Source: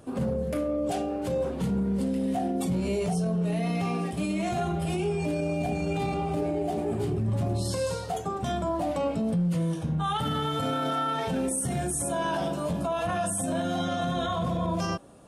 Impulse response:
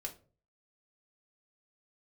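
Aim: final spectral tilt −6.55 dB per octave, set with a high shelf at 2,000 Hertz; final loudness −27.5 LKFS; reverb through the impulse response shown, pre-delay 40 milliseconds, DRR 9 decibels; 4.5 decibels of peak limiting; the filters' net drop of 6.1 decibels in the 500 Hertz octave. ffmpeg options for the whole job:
-filter_complex "[0:a]equalizer=frequency=500:width_type=o:gain=-7.5,highshelf=frequency=2000:gain=-8,alimiter=level_in=1dB:limit=-24dB:level=0:latency=1,volume=-1dB,asplit=2[link_01][link_02];[1:a]atrim=start_sample=2205,adelay=40[link_03];[link_02][link_03]afir=irnorm=-1:irlink=0,volume=-7.5dB[link_04];[link_01][link_04]amix=inputs=2:normalize=0,volume=5dB"

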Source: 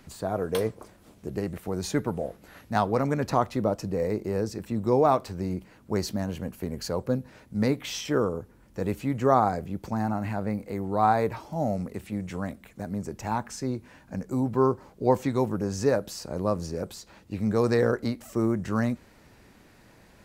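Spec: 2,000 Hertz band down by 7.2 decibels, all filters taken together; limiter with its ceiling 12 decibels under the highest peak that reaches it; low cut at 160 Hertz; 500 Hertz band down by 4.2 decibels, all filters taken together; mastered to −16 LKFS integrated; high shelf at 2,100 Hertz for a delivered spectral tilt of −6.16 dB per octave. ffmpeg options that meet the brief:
ffmpeg -i in.wav -af "highpass=160,equalizer=frequency=500:width_type=o:gain=-4.5,equalizer=frequency=2000:width_type=o:gain=-8,highshelf=frequency=2100:gain=-3,volume=19dB,alimiter=limit=-4dB:level=0:latency=1" out.wav

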